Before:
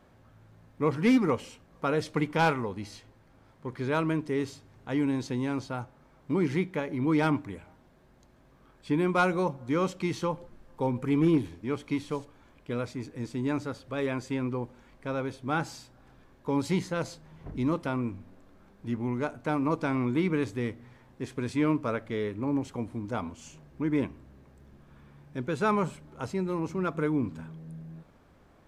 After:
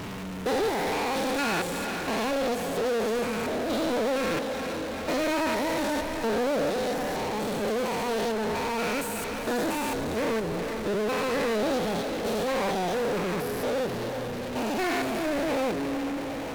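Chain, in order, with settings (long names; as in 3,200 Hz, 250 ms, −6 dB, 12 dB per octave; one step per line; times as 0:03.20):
spectrum averaged block by block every 400 ms
on a send: feedback delay with all-pass diffusion 688 ms, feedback 47%, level −14 dB
on the sum: power curve on the samples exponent 0.35
wrong playback speed 45 rpm record played at 78 rpm
level −2.5 dB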